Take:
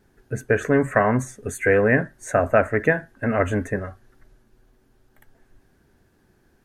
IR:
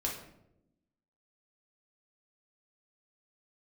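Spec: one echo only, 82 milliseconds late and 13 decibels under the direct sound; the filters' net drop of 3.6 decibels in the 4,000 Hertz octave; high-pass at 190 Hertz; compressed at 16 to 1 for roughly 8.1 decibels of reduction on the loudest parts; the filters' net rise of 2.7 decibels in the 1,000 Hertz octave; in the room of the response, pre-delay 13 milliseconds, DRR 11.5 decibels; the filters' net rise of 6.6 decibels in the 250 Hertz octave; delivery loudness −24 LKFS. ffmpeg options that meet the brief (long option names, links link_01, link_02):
-filter_complex "[0:a]highpass=190,equalizer=frequency=250:width_type=o:gain=9,equalizer=frequency=1000:width_type=o:gain=3.5,equalizer=frequency=4000:width_type=o:gain=-6,acompressor=threshold=-17dB:ratio=16,aecho=1:1:82:0.224,asplit=2[link_01][link_02];[1:a]atrim=start_sample=2205,adelay=13[link_03];[link_02][link_03]afir=irnorm=-1:irlink=0,volume=-15dB[link_04];[link_01][link_04]amix=inputs=2:normalize=0"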